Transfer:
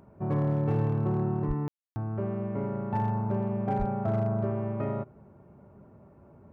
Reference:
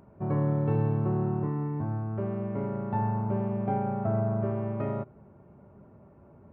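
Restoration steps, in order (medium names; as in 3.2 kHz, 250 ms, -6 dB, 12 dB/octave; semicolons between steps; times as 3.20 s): clip repair -20.5 dBFS; de-plosive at 1.47/3.78 s; room tone fill 1.68–1.96 s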